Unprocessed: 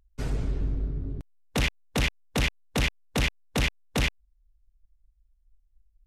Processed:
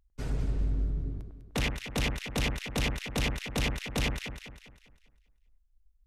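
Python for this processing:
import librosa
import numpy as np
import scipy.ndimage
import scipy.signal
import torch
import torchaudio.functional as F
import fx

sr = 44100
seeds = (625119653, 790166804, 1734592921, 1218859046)

p1 = x + fx.echo_alternate(x, sr, ms=100, hz=1600.0, feedback_pct=65, wet_db=-5.0, dry=0)
y = F.gain(torch.from_numpy(p1), -4.5).numpy()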